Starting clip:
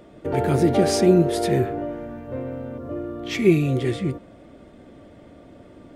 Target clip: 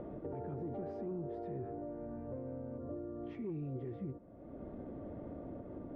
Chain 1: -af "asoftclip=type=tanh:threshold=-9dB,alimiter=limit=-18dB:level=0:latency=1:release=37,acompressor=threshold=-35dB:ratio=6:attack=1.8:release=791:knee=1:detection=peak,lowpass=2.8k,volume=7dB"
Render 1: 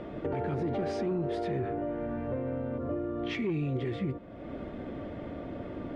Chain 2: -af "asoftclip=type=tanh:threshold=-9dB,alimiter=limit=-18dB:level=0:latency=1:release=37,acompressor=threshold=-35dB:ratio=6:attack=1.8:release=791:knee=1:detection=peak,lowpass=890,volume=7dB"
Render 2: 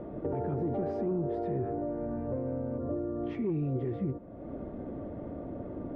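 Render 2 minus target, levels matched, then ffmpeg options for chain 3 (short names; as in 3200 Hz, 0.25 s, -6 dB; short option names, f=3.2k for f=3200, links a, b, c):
compressor: peak gain reduction -9.5 dB
-af "asoftclip=type=tanh:threshold=-9dB,alimiter=limit=-18dB:level=0:latency=1:release=37,acompressor=threshold=-46.5dB:ratio=6:attack=1.8:release=791:knee=1:detection=peak,lowpass=890,volume=7dB"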